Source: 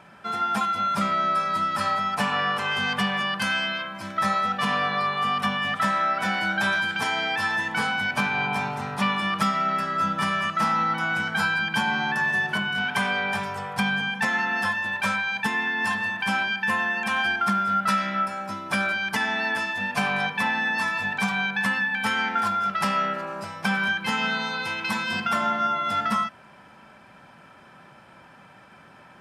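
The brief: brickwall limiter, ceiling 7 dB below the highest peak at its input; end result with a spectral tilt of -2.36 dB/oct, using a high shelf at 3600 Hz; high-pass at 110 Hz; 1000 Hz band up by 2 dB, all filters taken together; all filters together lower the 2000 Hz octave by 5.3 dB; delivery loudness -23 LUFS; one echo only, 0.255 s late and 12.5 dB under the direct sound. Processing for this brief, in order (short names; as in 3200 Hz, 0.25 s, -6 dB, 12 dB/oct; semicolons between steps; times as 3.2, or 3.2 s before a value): HPF 110 Hz; bell 1000 Hz +7 dB; bell 2000 Hz -8.5 dB; high shelf 3600 Hz -6.5 dB; limiter -17 dBFS; echo 0.255 s -12.5 dB; gain +3 dB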